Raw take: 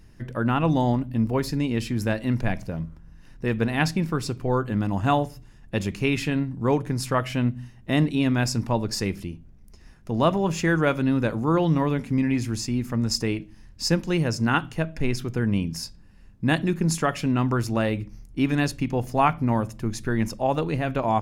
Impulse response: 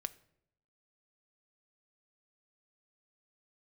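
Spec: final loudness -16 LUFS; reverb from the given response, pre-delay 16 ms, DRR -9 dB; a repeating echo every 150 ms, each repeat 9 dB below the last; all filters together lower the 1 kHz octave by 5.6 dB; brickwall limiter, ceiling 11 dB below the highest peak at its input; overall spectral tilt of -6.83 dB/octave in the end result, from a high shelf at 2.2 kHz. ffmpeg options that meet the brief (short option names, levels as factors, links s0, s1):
-filter_complex "[0:a]equalizer=f=1000:t=o:g=-6.5,highshelf=f=2200:g=-5.5,alimiter=limit=0.106:level=0:latency=1,aecho=1:1:150|300|450|600:0.355|0.124|0.0435|0.0152,asplit=2[s0][s1];[1:a]atrim=start_sample=2205,adelay=16[s2];[s1][s2]afir=irnorm=-1:irlink=0,volume=3.35[s3];[s0][s3]amix=inputs=2:normalize=0,volume=1.58"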